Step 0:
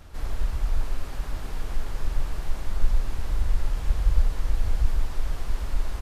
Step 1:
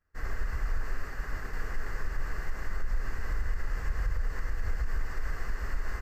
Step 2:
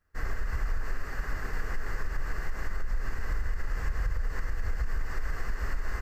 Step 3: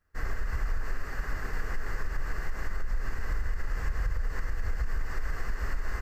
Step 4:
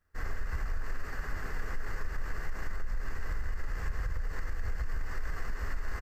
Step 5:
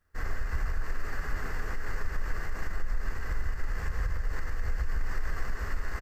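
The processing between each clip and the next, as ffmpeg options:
-af "alimiter=limit=-17.5dB:level=0:latency=1:release=82,superequalizer=7b=1.58:10b=2.24:11b=3.98:13b=0.355:16b=0.316,agate=range=-33dB:threshold=-27dB:ratio=3:detection=peak,volume=-4dB"
-af "acompressor=threshold=-28dB:ratio=6,volume=4dB"
-af anull
-filter_complex "[0:a]asplit=2[a][b];[b]asoftclip=type=tanh:threshold=-33dB,volume=-6.5dB[c];[a][c]amix=inputs=2:normalize=0,asplit=2[d][e];[e]adelay=12,volume=-13.5dB[f];[d][f]amix=inputs=2:normalize=0,volume=-4.5dB"
-af "aecho=1:1:149:0.335,volume=2.5dB"

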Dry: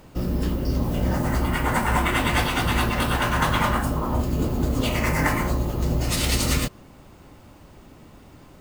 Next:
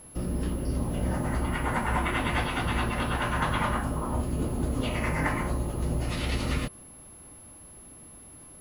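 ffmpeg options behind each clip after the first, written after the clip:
-filter_complex "[0:a]acrossover=split=3900[a][b];[b]acompressor=threshold=-48dB:ratio=4:attack=1:release=60[c];[a][c]amix=inputs=2:normalize=0,aeval=exprs='val(0)+0.00794*sin(2*PI*11000*n/s)':c=same,volume=-5.5dB"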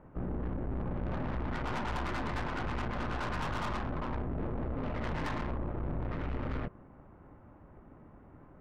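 -af "lowpass=f=1.7k:w=0.5412,lowpass=f=1.7k:w=1.3066,aeval=exprs='(tanh(56.2*val(0)+0.65)-tanh(0.65))/56.2':c=same,volume=2dB"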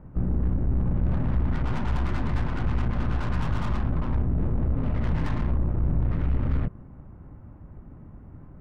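-af "bass=f=250:g=13,treble=f=4k:g=-1"

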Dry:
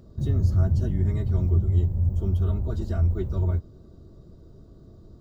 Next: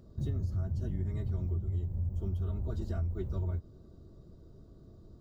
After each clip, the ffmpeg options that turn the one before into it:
-af "acompressor=threshold=-24dB:ratio=6,volume=-5.5dB"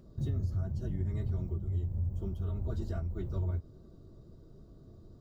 -af "flanger=delay=5:depth=4.4:regen=-65:speed=1.3:shape=triangular,volume=4.5dB"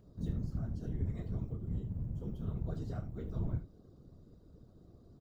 -filter_complex "[0:a]asplit=2[a][b];[b]aecho=0:1:31|76:0.398|0.237[c];[a][c]amix=inputs=2:normalize=0,afftfilt=real='hypot(re,im)*cos(2*PI*random(0))':imag='hypot(re,im)*sin(2*PI*random(1))':win_size=512:overlap=0.75,volume=1dB"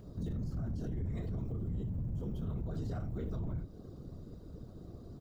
-filter_complex "[0:a]asplit=2[a][b];[b]acompressor=threshold=-43dB:ratio=6,volume=2dB[c];[a][c]amix=inputs=2:normalize=0,alimiter=level_in=9.5dB:limit=-24dB:level=0:latency=1:release=16,volume=-9.5dB,volume=2.5dB"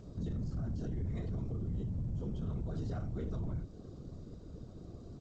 -ar 16000 -c:a g722

